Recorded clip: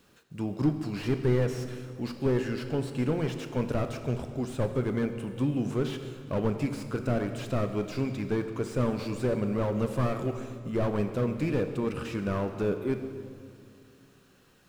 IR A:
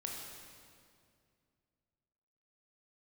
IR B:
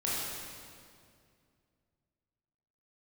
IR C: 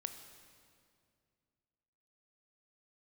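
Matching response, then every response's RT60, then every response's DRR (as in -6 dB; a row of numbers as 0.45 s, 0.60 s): C; 2.3 s, 2.3 s, 2.3 s; -1.5 dB, -8.0 dB, 7.5 dB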